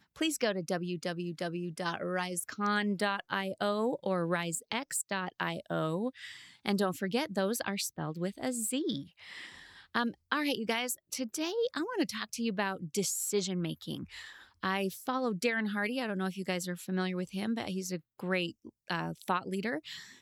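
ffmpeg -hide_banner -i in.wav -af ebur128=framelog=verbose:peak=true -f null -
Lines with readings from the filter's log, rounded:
Integrated loudness:
  I:         -33.8 LUFS
  Threshold: -44.1 LUFS
Loudness range:
  LRA:         2.2 LU
  Threshold: -54.0 LUFS
  LRA low:   -35.1 LUFS
  LRA high:  -32.9 LUFS
True peak:
  Peak:      -12.9 dBFS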